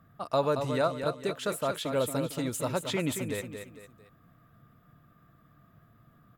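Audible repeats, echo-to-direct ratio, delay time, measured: 3, -7.0 dB, 0.226 s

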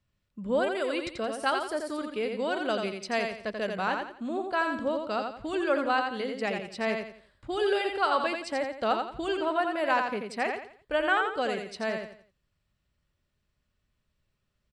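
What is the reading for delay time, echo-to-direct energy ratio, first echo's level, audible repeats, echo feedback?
86 ms, -4.5 dB, -5.0 dB, 4, 33%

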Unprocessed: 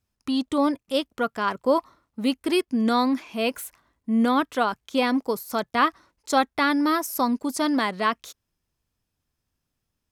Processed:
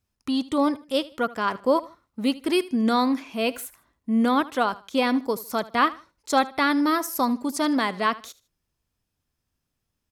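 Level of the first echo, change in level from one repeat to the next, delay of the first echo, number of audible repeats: -19.0 dB, -10.5 dB, 77 ms, 2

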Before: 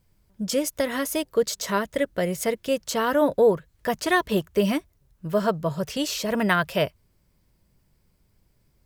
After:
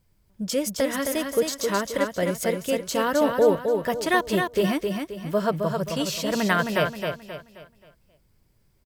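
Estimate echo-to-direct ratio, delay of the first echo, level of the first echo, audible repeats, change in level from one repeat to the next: -4.5 dB, 0.265 s, -5.0 dB, 4, -8.5 dB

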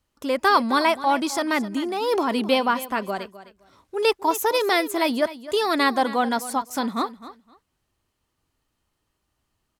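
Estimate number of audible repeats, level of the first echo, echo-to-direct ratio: 2, -15.5 dB, -15.5 dB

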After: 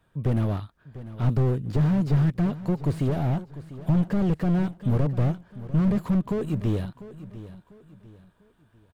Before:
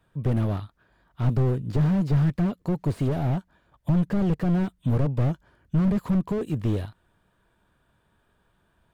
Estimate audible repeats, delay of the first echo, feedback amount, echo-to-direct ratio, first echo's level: 3, 0.697 s, 35%, -15.0 dB, -15.5 dB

